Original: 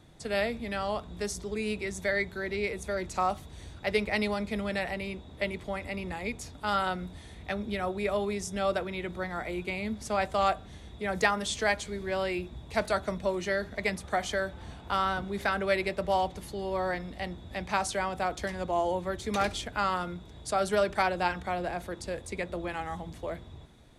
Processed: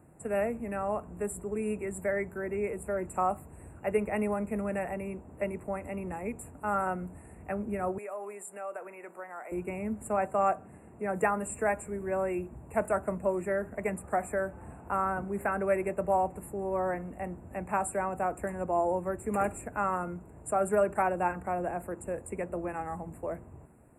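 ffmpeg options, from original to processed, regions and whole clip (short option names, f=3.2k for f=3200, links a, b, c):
-filter_complex "[0:a]asettb=1/sr,asplit=3[a][b][c];[a]atrim=end=7.984[d];[b]atrim=start=7.98:end=9.52,asetpts=PTS-STARTPTS,afade=t=in:d=0.004:c=qsin,afade=t=out:st=1.536:d=0.004:c=qsin,highpass=610,acompressor=threshold=-37dB:ratio=2.5:attack=3.2:release=140:knee=1:detection=peak[e];[c]atrim=start=9.516[f];[d][e]acrossfade=d=0.004:c1=hsin:c2=qsin[g];[g][f]acrossfade=d=0.004:c1=qsin:c2=hsin,asettb=1/sr,asplit=3[h][i][j];[h]atrim=end=10.184[k];[i]atrim=start=10.18:end=11.23,asetpts=PTS-STARTPTS,afade=t=in:d=0.004:c=qsin,afade=t=out:st=1.046:d=0.004:c=qsin,highpass=110,highshelf=f=9.3k:g=-5[l];[j]atrim=start=11.226[m];[k][l]acrossfade=d=0.004:c1=hsin:c2=qsin[n];[n][m]acrossfade=d=0.004:c1=qsin:c2=hsin,afftfilt=real='re*(1-between(b*sr/4096,2800,7100))':imag='im*(1-between(b*sr/4096,2800,7100))':win_size=4096:overlap=0.75,highpass=f=120:p=1,equalizer=f=2.4k:w=1.2:g=-12,volume=1.5dB"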